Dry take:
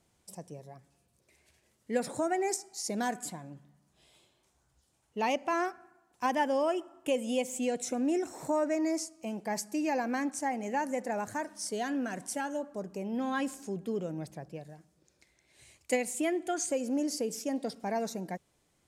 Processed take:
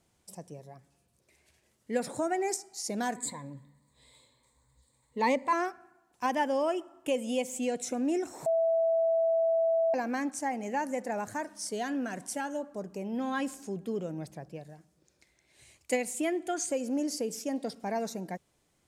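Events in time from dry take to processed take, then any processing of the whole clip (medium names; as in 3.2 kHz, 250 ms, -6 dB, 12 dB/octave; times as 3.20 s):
3.16–5.53 s: rippled EQ curve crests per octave 1, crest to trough 15 dB
8.46–9.94 s: bleep 658 Hz -23 dBFS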